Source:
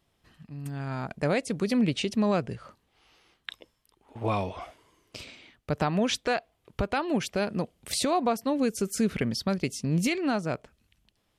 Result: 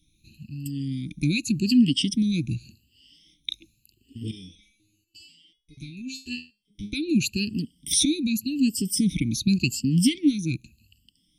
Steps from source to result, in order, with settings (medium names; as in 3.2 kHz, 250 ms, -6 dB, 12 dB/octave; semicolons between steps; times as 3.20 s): drifting ripple filter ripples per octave 1.4, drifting +0.87 Hz, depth 22 dB; Chebyshev band-stop 310–2600 Hz, order 4; 4.31–6.93 s: resonator arpeggio 4.1 Hz 82–420 Hz; trim +3.5 dB